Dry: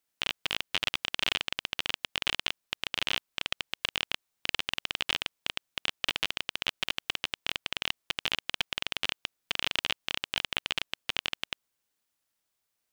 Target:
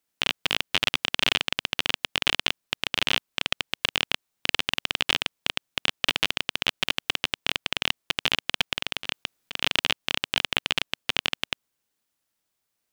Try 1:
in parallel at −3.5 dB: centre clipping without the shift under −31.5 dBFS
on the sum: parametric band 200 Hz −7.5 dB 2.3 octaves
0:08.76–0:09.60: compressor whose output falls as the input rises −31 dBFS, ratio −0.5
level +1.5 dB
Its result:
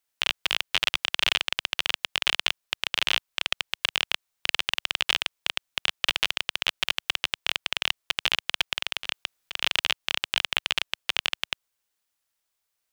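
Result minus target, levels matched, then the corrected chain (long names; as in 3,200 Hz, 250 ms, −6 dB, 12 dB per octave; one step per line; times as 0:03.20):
250 Hz band −9.0 dB
in parallel at −3.5 dB: centre clipping without the shift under −31.5 dBFS
on the sum: parametric band 200 Hz +3.5 dB 2.3 octaves
0:08.76–0:09.60: compressor whose output falls as the input rises −31 dBFS, ratio −0.5
level +1.5 dB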